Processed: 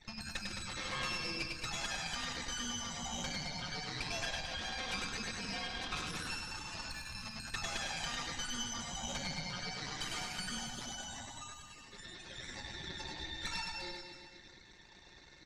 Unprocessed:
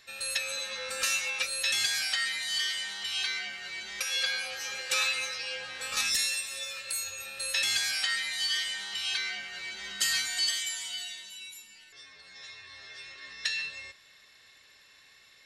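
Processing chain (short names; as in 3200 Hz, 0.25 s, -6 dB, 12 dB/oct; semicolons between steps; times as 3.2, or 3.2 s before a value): formant sharpening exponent 3; RIAA curve playback; comb 5.6 ms, depth 75%; compressor 3:1, threshold -49 dBFS, peak gain reduction 16.5 dB; added harmonics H 7 -19 dB, 8 -10 dB, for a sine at -31 dBFS; air absorption 79 m; reverse bouncing-ball echo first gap 0.1 s, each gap 1.15×, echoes 5; gain +5.5 dB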